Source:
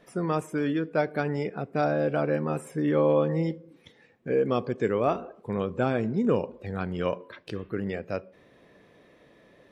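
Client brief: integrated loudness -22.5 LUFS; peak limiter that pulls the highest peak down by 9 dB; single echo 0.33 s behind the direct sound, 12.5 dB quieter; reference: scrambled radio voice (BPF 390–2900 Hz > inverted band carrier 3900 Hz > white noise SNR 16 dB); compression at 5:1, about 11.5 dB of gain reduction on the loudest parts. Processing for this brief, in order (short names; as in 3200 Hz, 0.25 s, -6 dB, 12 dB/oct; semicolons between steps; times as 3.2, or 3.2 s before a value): compressor 5:1, threshold -32 dBFS; limiter -29.5 dBFS; BPF 390–2900 Hz; echo 0.33 s -12.5 dB; inverted band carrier 3900 Hz; white noise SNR 16 dB; gain +18 dB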